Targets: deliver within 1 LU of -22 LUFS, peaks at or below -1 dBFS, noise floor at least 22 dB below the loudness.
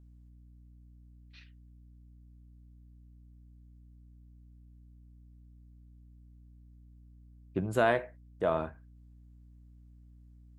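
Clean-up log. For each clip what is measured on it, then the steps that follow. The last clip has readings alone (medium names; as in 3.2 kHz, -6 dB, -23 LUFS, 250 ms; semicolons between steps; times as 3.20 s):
hum 60 Hz; highest harmonic 300 Hz; hum level -53 dBFS; loudness -31.5 LUFS; peak level -12.5 dBFS; loudness target -22.0 LUFS
-> de-hum 60 Hz, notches 5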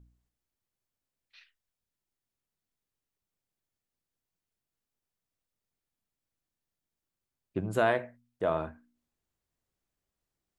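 hum not found; loudness -31.5 LUFS; peak level -12.5 dBFS; loudness target -22.0 LUFS
-> trim +9.5 dB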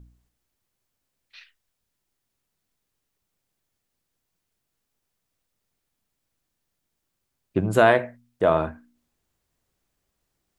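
loudness -22.0 LUFS; peak level -3.0 dBFS; noise floor -80 dBFS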